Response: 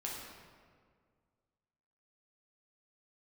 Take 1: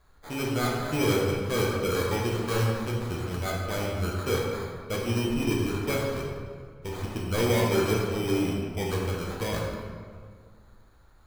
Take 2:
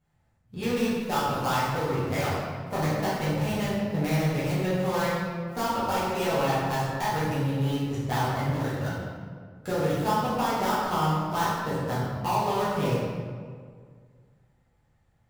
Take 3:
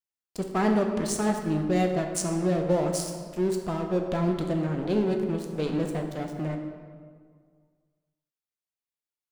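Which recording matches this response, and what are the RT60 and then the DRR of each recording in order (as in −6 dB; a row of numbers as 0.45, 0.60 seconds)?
1; 1.9, 1.9, 1.9 seconds; −4.0, −11.5, 2.5 decibels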